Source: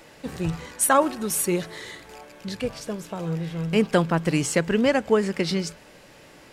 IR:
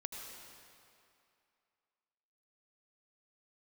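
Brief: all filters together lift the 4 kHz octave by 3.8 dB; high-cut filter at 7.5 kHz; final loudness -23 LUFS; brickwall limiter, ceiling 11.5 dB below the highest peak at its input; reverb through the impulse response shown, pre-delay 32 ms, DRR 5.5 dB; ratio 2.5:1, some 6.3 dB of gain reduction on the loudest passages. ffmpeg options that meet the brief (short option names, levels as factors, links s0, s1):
-filter_complex "[0:a]lowpass=7500,equalizer=f=4000:t=o:g=5.5,acompressor=threshold=0.0708:ratio=2.5,alimiter=limit=0.0841:level=0:latency=1,asplit=2[s0][s1];[1:a]atrim=start_sample=2205,adelay=32[s2];[s1][s2]afir=irnorm=-1:irlink=0,volume=0.596[s3];[s0][s3]amix=inputs=2:normalize=0,volume=2.51"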